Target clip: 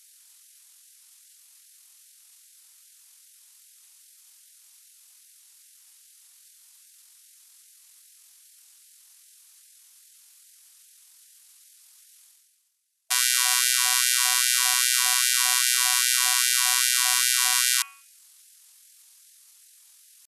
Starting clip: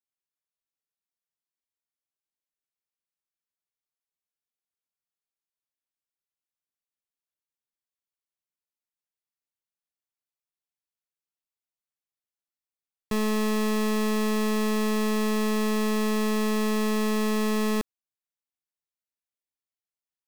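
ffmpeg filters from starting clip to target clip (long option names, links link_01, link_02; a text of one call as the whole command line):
ffmpeg -i in.wav -af "crystalizer=i=7.5:c=0,areverse,acompressor=mode=upward:threshold=-34dB:ratio=2.5,areverse,asetrate=25476,aresample=44100,atempo=1.73107,bandreject=frequency=85.7:width_type=h:width=4,bandreject=frequency=171.4:width_type=h:width=4,bandreject=frequency=257.1:width_type=h:width=4,bandreject=frequency=342.8:width_type=h:width=4,bandreject=frequency=428.5:width_type=h:width=4,bandreject=frequency=514.2:width_type=h:width=4,bandreject=frequency=599.9:width_type=h:width=4,bandreject=frequency=685.6:width_type=h:width=4,bandreject=frequency=771.3:width_type=h:width=4,bandreject=frequency=857:width_type=h:width=4,bandreject=frequency=942.7:width_type=h:width=4,bandreject=frequency=1028.4:width_type=h:width=4,bandreject=frequency=1114.1:width_type=h:width=4,bandreject=frequency=1199.8:width_type=h:width=4,bandreject=frequency=1285.5:width_type=h:width=4,bandreject=frequency=1371.2:width_type=h:width=4,bandreject=frequency=1456.9:width_type=h:width=4,bandreject=frequency=1542.6:width_type=h:width=4,bandreject=frequency=1628.3:width_type=h:width=4,bandreject=frequency=1714:width_type=h:width=4,bandreject=frequency=1799.7:width_type=h:width=4,bandreject=frequency=1885.4:width_type=h:width=4,bandreject=frequency=1971.1:width_type=h:width=4,bandreject=frequency=2056.8:width_type=h:width=4,bandreject=frequency=2142.5:width_type=h:width=4,bandreject=frequency=2228.2:width_type=h:width=4,bandreject=frequency=2313.9:width_type=h:width=4,bandreject=frequency=2399.6:width_type=h:width=4,bandreject=frequency=2485.3:width_type=h:width=4,bandreject=frequency=2571:width_type=h:width=4,bandreject=frequency=2656.7:width_type=h:width=4,bandreject=frequency=2742.4:width_type=h:width=4,bandreject=frequency=2828.1:width_type=h:width=4,bandreject=frequency=2913.8:width_type=h:width=4,bandreject=frequency=2999.5:width_type=h:width=4,bandreject=frequency=3085.2:width_type=h:width=4,bandreject=frequency=3170.9:width_type=h:width=4,bandreject=frequency=3256.6:width_type=h:width=4,afftfilt=real='re*gte(b*sr/1024,680*pow(1500/680,0.5+0.5*sin(2*PI*2.5*pts/sr)))':imag='im*gte(b*sr/1024,680*pow(1500/680,0.5+0.5*sin(2*PI*2.5*pts/sr)))':win_size=1024:overlap=0.75,volume=-1dB" out.wav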